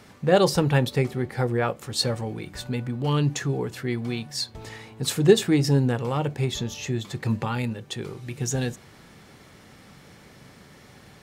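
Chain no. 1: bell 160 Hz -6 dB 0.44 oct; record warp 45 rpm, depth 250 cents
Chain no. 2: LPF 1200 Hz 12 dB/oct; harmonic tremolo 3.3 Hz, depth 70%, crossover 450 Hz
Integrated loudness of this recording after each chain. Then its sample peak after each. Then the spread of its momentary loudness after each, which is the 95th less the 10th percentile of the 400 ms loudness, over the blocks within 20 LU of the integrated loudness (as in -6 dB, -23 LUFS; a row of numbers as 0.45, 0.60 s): -26.0, -29.0 LUFS; -4.0, -9.5 dBFS; 13, 17 LU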